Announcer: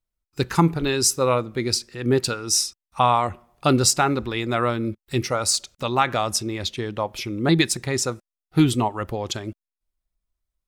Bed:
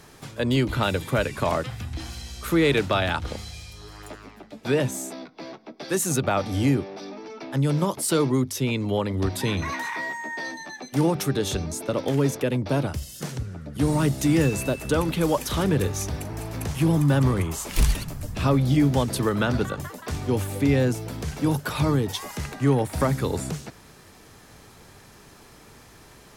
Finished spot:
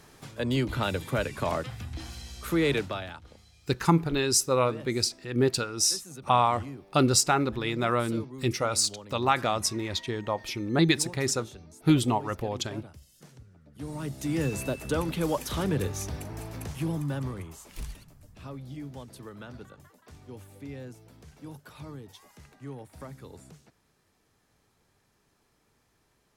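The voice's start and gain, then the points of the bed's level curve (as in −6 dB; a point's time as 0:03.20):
3.30 s, −4.0 dB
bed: 0:02.74 −5 dB
0:03.23 −20 dB
0:13.57 −20 dB
0:14.57 −5.5 dB
0:16.41 −5.5 dB
0:18.10 −20.5 dB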